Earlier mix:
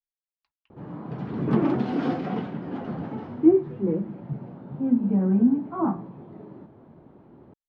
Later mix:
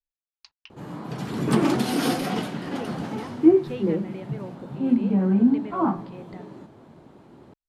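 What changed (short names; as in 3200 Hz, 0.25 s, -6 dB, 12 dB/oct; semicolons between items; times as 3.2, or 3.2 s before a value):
speech +12.0 dB; master: remove tape spacing loss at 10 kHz 42 dB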